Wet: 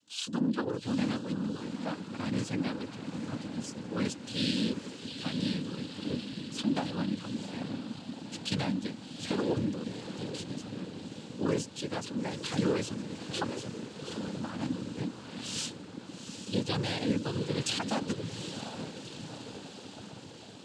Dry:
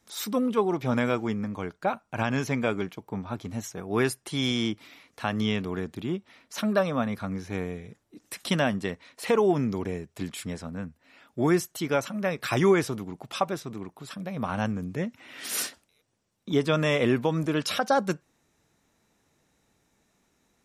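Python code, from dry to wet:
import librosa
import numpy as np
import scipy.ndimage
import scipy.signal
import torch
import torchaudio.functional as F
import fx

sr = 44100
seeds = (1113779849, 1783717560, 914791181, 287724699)

y = fx.graphic_eq_10(x, sr, hz=(250, 500, 2000, 4000), db=(7, -7, -6, 11))
y = fx.echo_diffused(y, sr, ms=797, feedback_pct=66, wet_db=-9)
y = fx.noise_vocoder(y, sr, seeds[0], bands=8)
y = F.gain(torch.from_numpy(y), -8.0).numpy()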